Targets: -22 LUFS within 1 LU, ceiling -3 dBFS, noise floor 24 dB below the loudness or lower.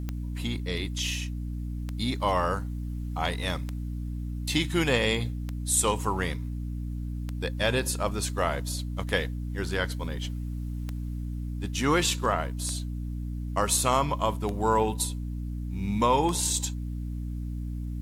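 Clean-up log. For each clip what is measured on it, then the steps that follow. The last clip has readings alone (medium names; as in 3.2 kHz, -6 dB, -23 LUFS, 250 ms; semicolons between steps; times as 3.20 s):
clicks found 10; hum 60 Hz; highest harmonic 300 Hz; hum level -30 dBFS; loudness -29.0 LUFS; peak level -10.0 dBFS; loudness target -22.0 LUFS
-> de-click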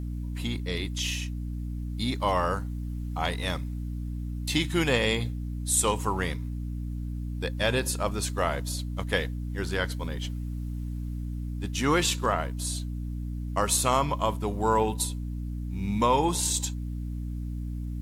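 clicks found 0; hum 60 Hz; highest harmonic 300 Hz; hum level -30 dBFS
-> de-hum 60 Hz, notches 5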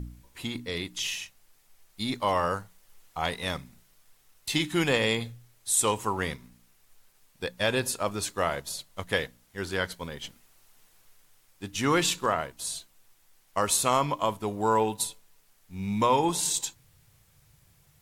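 hum not found; loudness -28.5 LUFS; peak level -10.0 dBFS; loudness target -22.0 LUFS
-> trim +6.5 dB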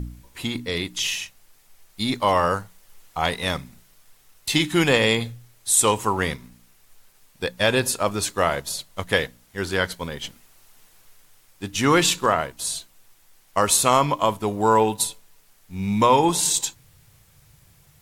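loudness -22.0 LUFS; peak level -3.5 dBFS; noise floor -57 dBFS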